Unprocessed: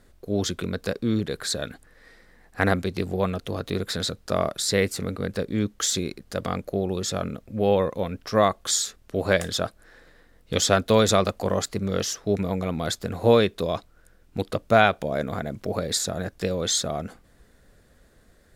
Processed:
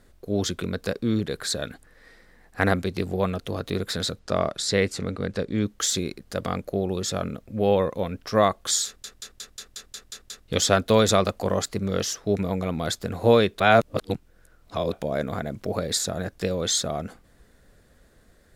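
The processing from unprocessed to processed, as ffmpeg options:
-filter_complex "[0:a]asettb=1/sr,asplit=3[a][b][c];[a]atrim=end=4.194[d];[b]atrim=start=4.19:end=5.63,asetpts=PTS-STARTPTS,afade=t=in:d=0.004:c=qsin,afade=t=out:st=1.436:d=0.004:c=qsin,lowpass=7.6k[e];[c]atrim=start=5.626[f];[d][e]acrossfade=d=0.004:c1=hsin:c2=qsin[g];[g][f]acrossfade=d=0.004:c1=qsin:c2=hsin,asplit=12[h][i][j][k][l][m][n][o][p][q][r][s];[h]atrim=end=9.042[t];[i]atrim=start=8.858:end=9.042[u];[j]atrim=start=8.858:end=9.042[v];[k]atrim=start=8.858:end=9.042[w];[l]atrim=start=8.858:end=9.042[x];[m]atrim=start=8.858:end=9.042[y];[n]atrim=start=8.858:end=9.042[z];[o]atrim=start=8.858:end=9.042[aa];[p]atrim=start=8.858:end=9.042[ab];[q]atrim=start=10.478:end=13.602[ac];[r]atrim=start=13.598:end=14.922,asetpts=PTS-STARTPTS,areverse[ad];[s]atrim=start=14.918[ae];[t][u]acrossfade=d=0.004:c1=hsin:c2=hsin[af];[af][v]acrossfade=d=0.004:c1=hsin:c2=hsin[ag];[ag][w]acrossfade=d=0.004:c1=hsin:c2=hsin[ah];[ah][x]acrossfade=d=0.004:c1=hsin:c2=hsin[ai];[ai][y]acrossfade=d=0.004:c1=hsin:c2=hsin[aj];[aj][z]acrossfade=d=0.004:c1=hsin:c2=hsin[ak];[ak][aa]acrossfade=d=0.004:c1=hsin:c2=hsin[al];[al][ab]acrossfade=d=0.004:c1=hsin:c2=hsin[am];[am][ac]acrossfade=d=0.004:c1=hsin:c2=hsin[an];[an][ad]acrossfade=d=0.004:c1=hsin:c2=hsin[ao];[ao][ae]acrossfade=d=0.004:c1=hsin:c2=hsin"

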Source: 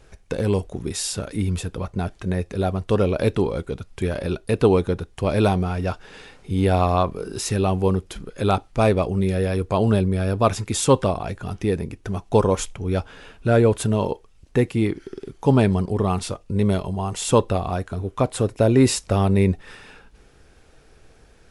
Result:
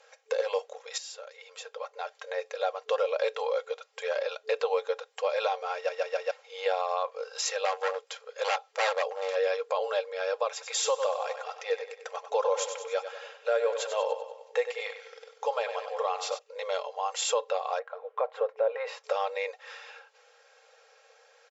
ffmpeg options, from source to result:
-filter_complex "[0:a]asettb=1/sr,asplit=3[a][b][c];[a]atrim=end=7.654[d];[b]atrim=start=7.65:end=9.36,asetpts=PTS-STARTPTS,afade=t=in:d=0.004:c=qsin,afade=t=out:st=1.706:d=0.004:c=qsin,aeval=exprs='0.141*(abs(mod(val(0)/0.141+3,4)-2)-1)':c=same[e];[c]atrim=start=9.356[f];[d][e]acrossfade=d=0.004:c1=hsin:c2=qsin[g];[g][f]acrossfade=d=0.004:c1=qsin:c2=hsin,asettb=1/sr,asplit=3[h][i][j];[h]atrim=end=10.514[k];[i]atrim=start=10.51:end=16.39,asetpts=PTS-STARTPTS,afade=t=in:d=0.004:c=qsin,afade=t=out:st=5.876:d=0.004:c=qsin,aecho=1:1:96|192|288|384|480:0.299|0.149|0.0746|0.0373|0.0187,atrim=end_sample=259308[l];[j]atrim=start=16.386[m];[k][l]acrossfade=d=0.004:c1=hsin:c2=qsin[n];[n][m]acrossfade=d=0.004:c1=qsin:c2=hsin,asettb=1/sr,asplit=3[o][p][q];[o]atrim=end=17.794[r];[p]atrim=start=17.79:end=19.04,asetpts=PTS-STARTPTS,afade=t=in:d=0.004:c=qsin,afade=t=out:st=1.246:d=0.004:c=qsin,lowpass=1.6k[s];[q]atrim=start=19.036[t];[r][s]acrossfade=d=0.004:c1=hsin:c2=qsin[u];[u][t]acrossfade=d=0.004:c1=qsin:c2=hsin,asplit=6[v][w][x][y][z][aa];[v]atrim=end=0.98,asetpts=PTS-STARTPTS,afade=t=out:st=0.976:d=0.004:c=hsin:silence=0.177828[ab];[w]atrim=start=0.98:end=5.892,asetpts=PTS-STARTPTS,afade=t=in:d=1.43:silence=0.177828[ac];[x]atrim=start=5.748:end=5.892[ad];[y]atrim=start=5.748:end=5.892[ae];[z]atrim=start=5.748:end=5.892[af];[aa]atrim=start=6.308[ag];[ab][ac]concat=n=2:v=0:a=1[ah];[ah][ad]acrossfade=d=0.004:c1=hsin:c2=hsin[ai];[ai][ae]acrossfade=d=0.004:c1=hsin:c2=hsin[aj];[aj][af]acrossfade=d=0.004:c1=hsin:c2=hsin[ak];[ak][ag]acrossfade=d=0.004:c1=hsin:c2=hsin,afftfilt=real='re*between(b*sr/4096,440,7600)':imag='im*between(b*sr/4096,440,7600)':win_size=4096:overlap=0.75,aecho=1:1:3.7:0.51,alimiter=limit=-15.5dB:level=0:latency=1:release=225,volume=-2dB"

